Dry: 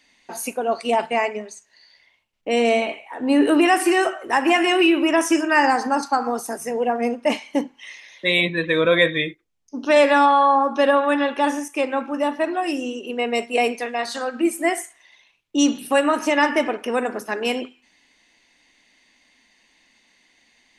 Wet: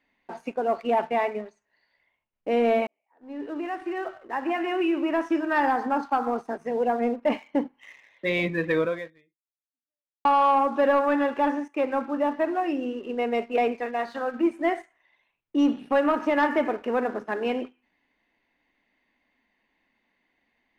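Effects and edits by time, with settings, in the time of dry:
2.87–6.41 fade in
8.78–10.25 fade out exponential
whole clip: LPF 1800 Hz 12 dB/oct; sample leveller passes 1; gain -6 dB

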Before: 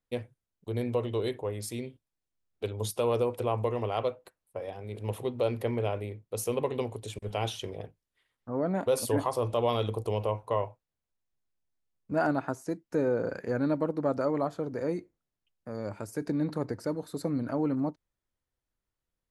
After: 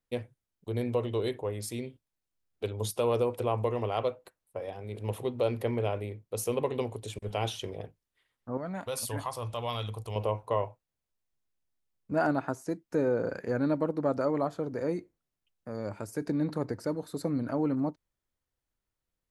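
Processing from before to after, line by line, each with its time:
8.57–10.16 bell 370 Hz -13 dB 1.9 oct

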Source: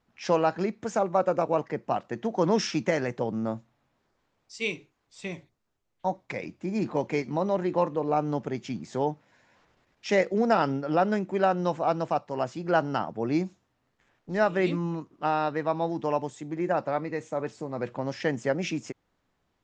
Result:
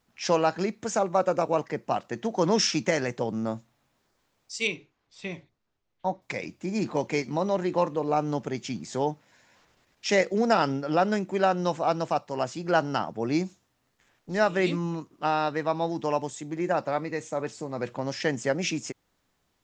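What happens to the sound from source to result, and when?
4.67–6.22 air absorption 160 m
whole clip: high shelf 3900 Hz +11.5 dB

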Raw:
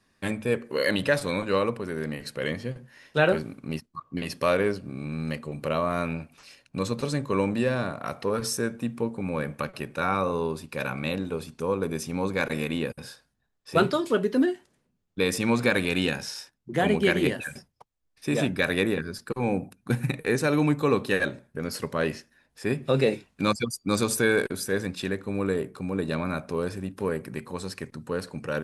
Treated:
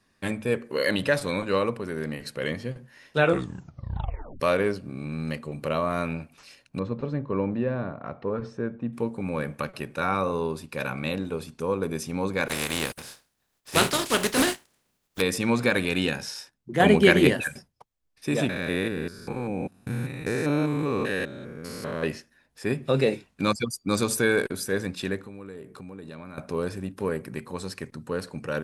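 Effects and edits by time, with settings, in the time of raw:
3.19 tape stop 1.21 s
6.79–8.93 tape spacing loss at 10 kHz 44 dB
12.48–15.2 spectral contrast lowered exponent 0.43
16.8–17.48 gain +5.5 dB
18.49–22.03 stepped spectrum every 0.2 s
25.18–26.38 compressor 4:1, threshold -39 dBFS

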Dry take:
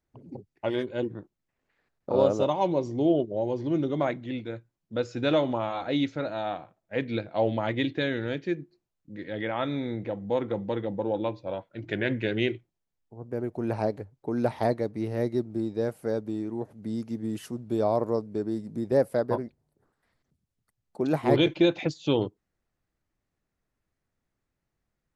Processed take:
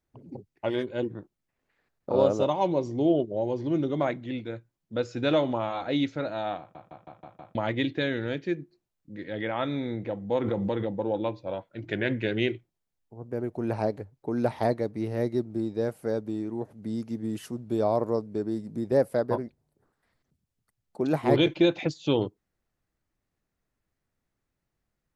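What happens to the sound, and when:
6.59 stutter in place 0.16 s, 6 plays
10.35–10.94 backwards sustainer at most 25 dB/s

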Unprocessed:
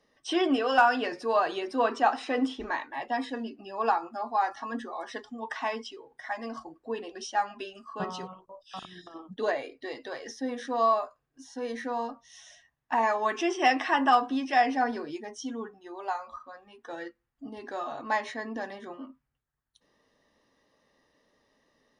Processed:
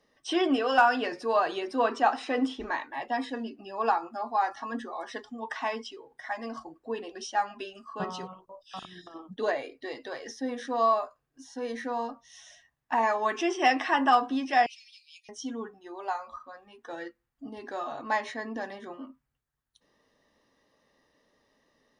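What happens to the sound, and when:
14.66–15.29 steep high-pass 2400 Hz 96 dB/oct

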